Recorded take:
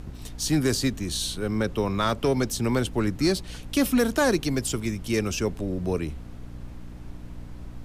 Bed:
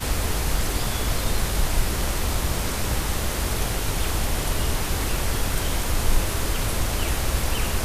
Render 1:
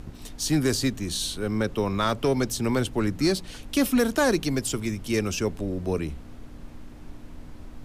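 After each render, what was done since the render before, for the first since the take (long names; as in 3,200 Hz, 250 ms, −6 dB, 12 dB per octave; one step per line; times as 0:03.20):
hum removal 60 Hz, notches 3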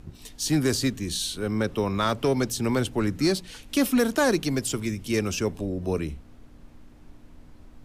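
noise reduction from a noise print 7 dB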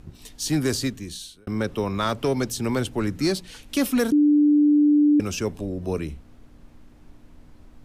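0:00.77–0:01.47: fade out
0:04.12–0:05.20: beep over 295 Hz −13.5 dBFS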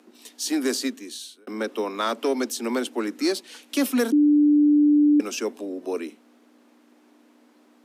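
Butterworth high-pass 230 Hz 72 dB per octave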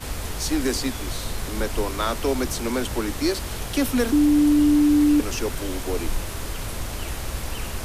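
mix in bed −6 dB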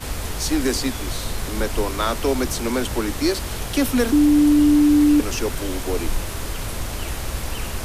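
level +2.5 dB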